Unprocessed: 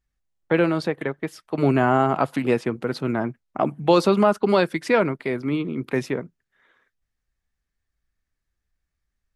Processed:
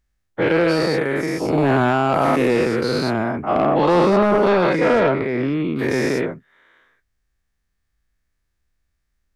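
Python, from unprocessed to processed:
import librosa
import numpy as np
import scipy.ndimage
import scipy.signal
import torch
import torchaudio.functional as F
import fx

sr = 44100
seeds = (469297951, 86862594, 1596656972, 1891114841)

y = fx.spec_dilate(x, sr, span_ms=240)
y = fx.lowpass(y, sr, hz=1700.0, slope=6, at=(3.66, 5.79))
y = 10.0 ** (-9.0 / 20.0) * np.tanh(y / 10.0 ** (-9.0 / 20.0))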